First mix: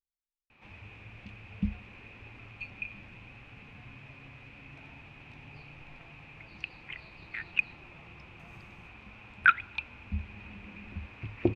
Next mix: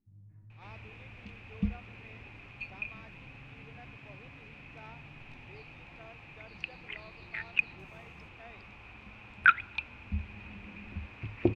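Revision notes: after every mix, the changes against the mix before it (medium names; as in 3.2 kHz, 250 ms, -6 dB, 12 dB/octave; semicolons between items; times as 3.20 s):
speech +11.5 dB; first sound: entry -0.60 s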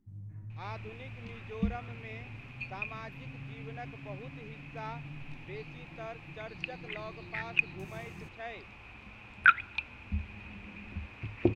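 speech +10.5 dB; first sound +10.0 dB; master: add treble shelf 8.2 kHz +6.5 dB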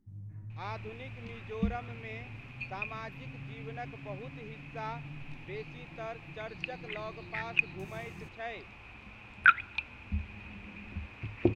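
speech: send on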